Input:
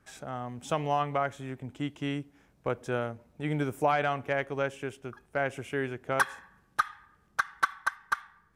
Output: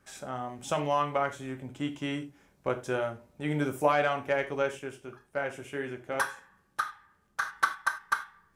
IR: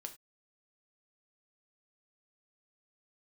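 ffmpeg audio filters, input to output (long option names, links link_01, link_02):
-filter_complex "[0:a]bass=frequency=250:gain=-2,treble=frequency=4000:gain=3[link_01];[1:a]atrim=start_sample=2205[link_02];[link_01][link_02]afir=irnorm=-1:irlink=0,asettb=1/sr,asplit=3[link_03][link_04][link_05];[link_03]atrim=end=4.794[link_06];[link_04]atrim=start=4.79:end=7.42,asetpts=PTS-STARTPTS,afade=type=in:duration=0.004:curve=qsin,afade=type=out:start_time=2.626:duration=0.004:curve=qsin,flanger=delay=5.7:depth=5.9:regen=-62:speed=1.9:shape=triangular[link_07];[link_05]atrim=start=7.416[link_08];[link_06][link_07]acrossfade=duration=0.004:curve1=hsin:curve2=qsin[link_09];[link_09][link_08]acrossfade=duration=0.004:curve1=qsin:curve2=hsin,volume=5dB"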